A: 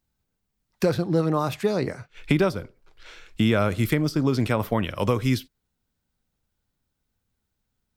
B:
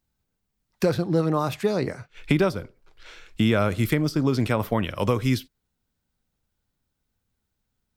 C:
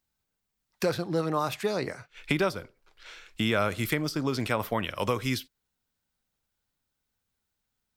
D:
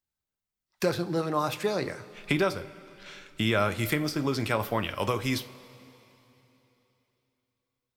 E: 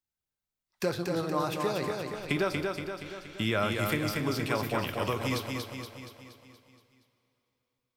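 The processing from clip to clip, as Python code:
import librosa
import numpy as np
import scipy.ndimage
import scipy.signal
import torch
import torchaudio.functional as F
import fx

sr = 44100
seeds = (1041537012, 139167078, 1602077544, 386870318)

y1 = x
y2 = fx.low_shelf(y1, sr, hz=470.0, db=-9.5)
y3 = fx.noise_reduce_blind(y2, sr, reduce_db=9)
y3 = fx.rev_double_slope(y3, sr, seeds[0], early_s=0.26, late_s=3.4, knee_db=-18, drr_db=9.0)
y4 = fx.echo_feedback(y3, sr, ms=236, feedback_pct=55, wet_db=-4.0)
y4 = F.gain(torch.from_numpy(y4), -3.5).numpy()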